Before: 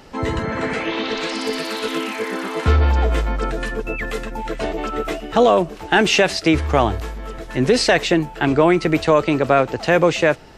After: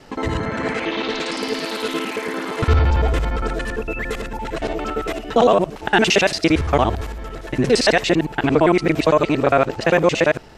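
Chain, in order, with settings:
reversed piece by piece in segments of 57 ms

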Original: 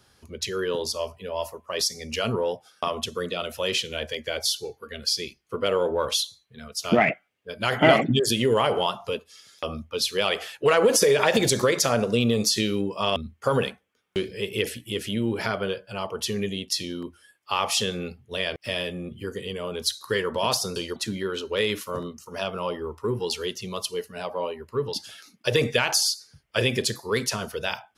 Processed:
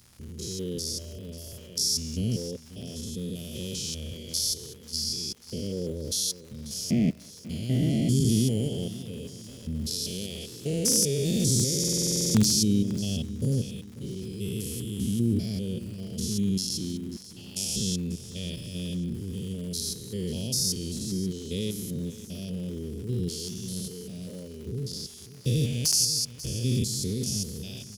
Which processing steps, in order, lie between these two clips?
spectrum averaged block by block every 200 ms
Chebyshev band-stop filter 200–6,500 Hz, order 2
dynamic equaliser 5,400 Hz, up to +4 dB, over −50 dBFS, Q 5.3
in parallel at −3 dB: wrap-around overflow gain 18.5 dB
on the sum: surface crackle 200 per second −43 dBFS
on a send: repeating echo 540 ms, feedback 42%, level −16 dB
on the sum: buffer that repeats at 0:11.79, samples 2,048, times 11
level +2.5 dB

